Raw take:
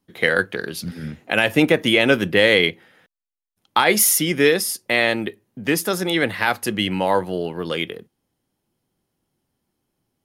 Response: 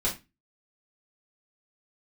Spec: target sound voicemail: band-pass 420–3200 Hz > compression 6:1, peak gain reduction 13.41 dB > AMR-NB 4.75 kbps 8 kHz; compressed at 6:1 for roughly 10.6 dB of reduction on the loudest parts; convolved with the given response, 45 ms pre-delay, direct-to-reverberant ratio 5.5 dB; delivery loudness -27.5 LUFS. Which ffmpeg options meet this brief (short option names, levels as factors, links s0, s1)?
-filter_complex "[0:a]acompressor=threshold=0.0794:ratio=6,asplit=2[s0][s1];[1:a]atrim=start_sample=2205,adelay=45[s2];[s1][s2]afir=irnorm=-1:irlink=0,volume=0.211[s3];[s0][s3]amix=inputs=2:normalize=0,highpass=420,lowpass=3200,acompressor=threshold=0.02:ratio=6,volume=5.01" -ar 8000 -c:a libopencore_amrnb -b:a 4750